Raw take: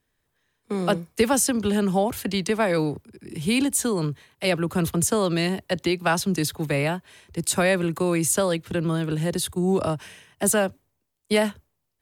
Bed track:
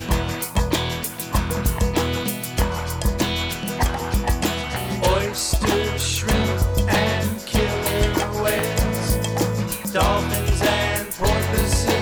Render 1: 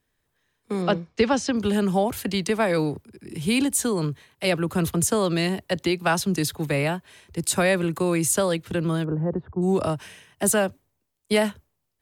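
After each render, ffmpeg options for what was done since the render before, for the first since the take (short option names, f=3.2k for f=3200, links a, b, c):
-filter_complex "[0:a]asettb=1/sr,asplit=3[a][b][c];[a]atrim=end=0.824[d];[b]atrim=start=0.82:end=1.57,asetpts=PTS-STARTPTS,afade=t=in:d=0.004:c=qsin,afade=t=out:st=0.746:d=0.004:c=qsin,lowpass=f=5.5k:w=0.5412,lowpass=f=5.5k:w=1.3066[e];[c]atrim=start=1.566[f];[d][e]acrossfade=d=0.004:c1=hsin:c2=qsin[g];[g][f]acrossfade=d=0.004:c1=qsin:c2=hsin,asplit=3[h][i][j];[h]afade=t=out:st=9.03:d=0.02[k];[i]lowpass=f=1.2k:w=0.5412,lowpass=f=1.2k:w=1.3066,afade=t=in:st=9.03:d=0.02,afade=t=out:st=9.61:d=0.02[l];[j]afade=t=in:st=9.61:d=0.02[m];[k][l][m]amix=inputs=3:normalize=0"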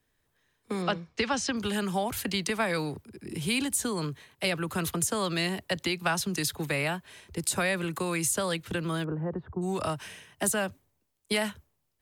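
-filter_complex "[0:a]acrossover=split=190|890[a][b][c];[a]acompressor=threshold=-38dB:ratio=4[d];[b]acompressor=threshold=-34dB:ratio=4[e];[c]acompressor=threshold=-26dB:ratio=4[f];[d][e][f]amix=inputs=3:normalize=0"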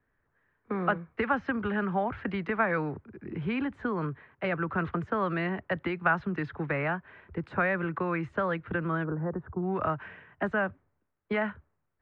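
-af "lowpass=f=2k:w=0.5412,lowpass=f=2k:w=1.3066,equalizer=f=1.4k:w=2:g=5.5"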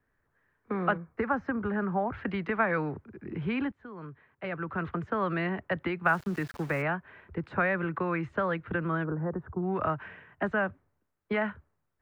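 -filter_complex "[0:a]asettb=1/sr,asplit=3[a][b][c];[a]atrim=end=0.974[d];[b]atrim=start=0.97:end=2.14,asetpts=PTS-STARTPTS,afade=t=in:d=0.004:c=qsin,afade=t=out:st=1.166:d=0.004:c=qsin,equalizer=f=3.2k:t=o:w=1.1:g=-13[e];[c]atrim=start=2.136[f];[d][e]acrossfade=d=0.004:c1=hsin:c2=qsin[g];[g][f]acrossfade=d=0.004:c1=qsin:c2=hsin,asplit=3[h][i][j];[h]afade=t=out:st=6.05:d=0.02[k];[i]aeval=exprs='val(0)*gte(abs(val(0)),0.00631)':c=same,afade=t=in:st=6.05:d=0.02,afade=t=out:st=6.81:d=0.02[l];[j]afade=t=in:st=6.81:d=0.02[m];[k][l][m]amix=inputs=3:normalize=0,asplit=2[n][o];[n]atrim=end=3.72,asetpts=PTS-STARTPTS,afade=t=out:st=3.716:d=0.004:c=hsin:silence=0.112202[p];[o]atrim=start=3.72,asetpts=PTS-STARTPTS,afade=t=in:d=1.59:silence=0.112202[q];[p][q]concat=n=2:v=0:a=1"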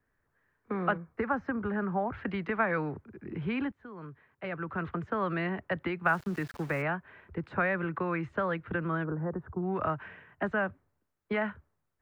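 -af "volume=-1.5dB"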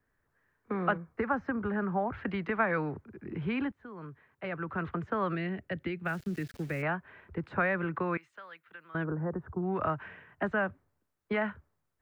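-filter_complex "[0:a]asettb=1/sr,asplit=3[a][b][c];[a]atrim=end=5.354[d];[b]atrim=start=5.35:end=6.83,asetpts=PTS-STARTPTS,afade=t=in:d=0.004:c=qsin,afade=t=out:st=1.476:d=0.004:c=qsin,equalizer=f=1k:t=o:w=1.2:g=-14.5[e];[c]atrim=start=6.826[f];[d][e]acrossfade=d=0.004:c1=hsin:c2=qsin[g];[g][f]acrossfade=d=0.004:c1=qsin:c2=hsin,asettb=1/sr,asplit=3[h][i][j];[h]atrim=end=8.174[k];[i]atrim=start=8.17:end=8.95,asetpts=PTS-STARTPTS,afade=t=in:d=0.004:c=qsin,afade=t=out:st=0.776:d=0.004:c=qsin,aderivative[l];[j]atrim=start=8.946[m];[k][l]acrossfade=d=0.004:c1=hsin:c2=qsin[n];[n][m]acrossfade=d=0.004:c1=qsin:c2=hsin"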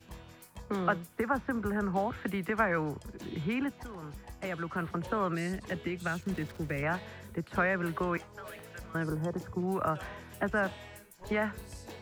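-filter_complex "[1:a]volume=-27dB[a];[0:a][a]amix=inputs=2:normalize=0"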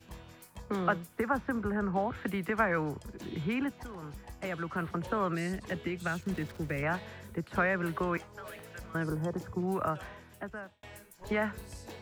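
-filter_complex "[0:a]asettb=1/sr,asplit=3[a][b][c];[a]atrim=end=1.634[d];[b]atrim=start=1.63:end=2.15,asetpts=PTS-STARTPTS,afade=t=in:d=0.004:c=qsin,afade=t=out:st=0.516:d=0.004:c=qsin,aemphasis=mode=reproduction:type=50kf[e];[c]atrim=start=2.146[f];[d][e]acrossfade=d=0.004:c1=hsin:c2=qsin[g];[g][f]acrossfade=d=0.004:c1=qsin:c2=hsin,asplit=2[h][i];[h]atrim=end=10.83,asetpts=PTS-STARTPTS,afade=t=out:st=9.74:d=1.09[j];[i]atrim=start=10.83,asetpts=PTS-STARTPTS,afade=t=in:d=0.004:c=hsin[k];[j][k]concat=n=2:v=0:a=1"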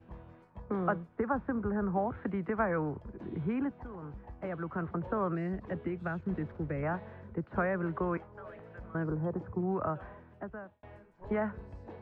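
-af "lowpass=1.2k"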